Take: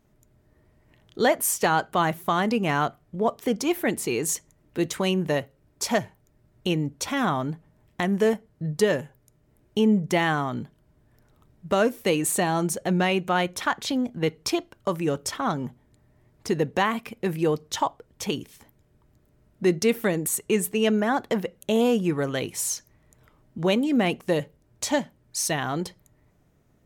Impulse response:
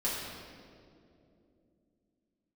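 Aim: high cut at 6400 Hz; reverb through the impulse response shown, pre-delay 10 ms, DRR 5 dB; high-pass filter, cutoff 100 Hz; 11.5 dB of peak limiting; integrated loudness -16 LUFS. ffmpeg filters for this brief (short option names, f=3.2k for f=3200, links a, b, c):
-filter_complex "[0:a]highpass=100,lowpass=6.4k,alimiter=limit=-19dB:level=0:latency=1,asplit=2[a][b];[1:a]atrim=start_sample=2205,adelay=10[c];[b][c]afir=irnorm=-1:irlink=0,volume=-12dB[d];[a][d]amix=inputs=2:normalize=0,volume=13dB"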